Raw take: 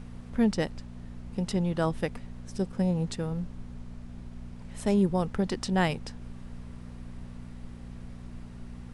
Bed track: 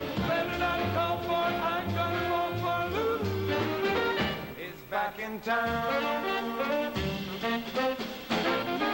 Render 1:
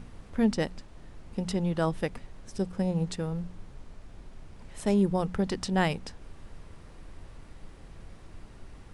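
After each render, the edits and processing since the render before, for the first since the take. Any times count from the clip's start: de-hum 60 Hz, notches 4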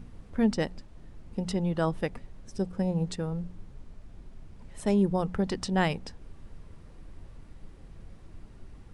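denoiser 6 dB, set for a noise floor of -49 dBFS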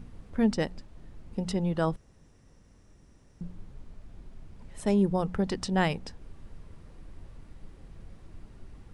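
1.96–3.41 room tone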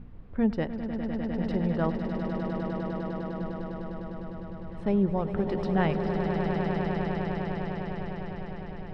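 air absorption 350 m; swelling echo 0.101 s, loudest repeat 8, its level -9 dB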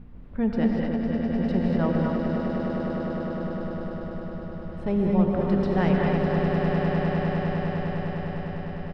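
outdoor echo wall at 54 m, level -6 dB; non-linear reverb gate 0.26 s rising, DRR 0 dB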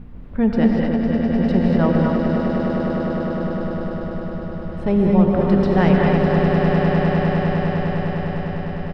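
gain +7 dB; limiter -3 dBFS, peak gain reduction 1 dB

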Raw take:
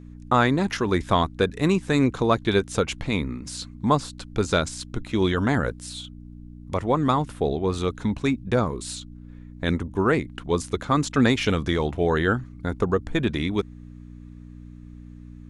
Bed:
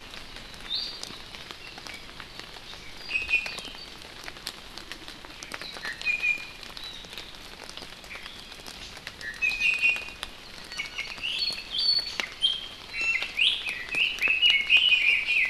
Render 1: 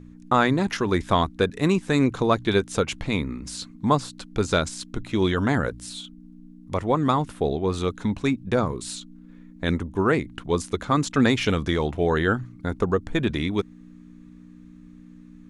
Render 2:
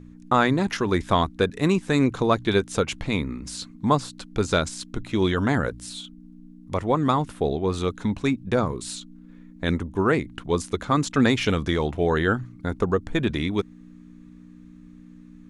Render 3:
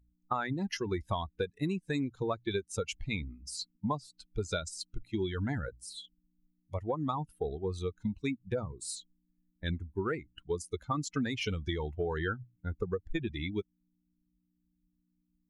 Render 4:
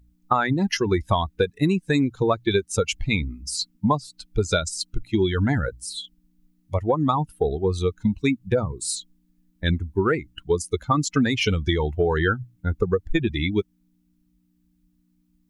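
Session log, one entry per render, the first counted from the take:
de-hum 60 Hz, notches 2
nothing audible
per-bin expansion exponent 2; compressor 10:1, threshold -29 dBFS, peak gain reduction 12.5 dB
gain +12 dB

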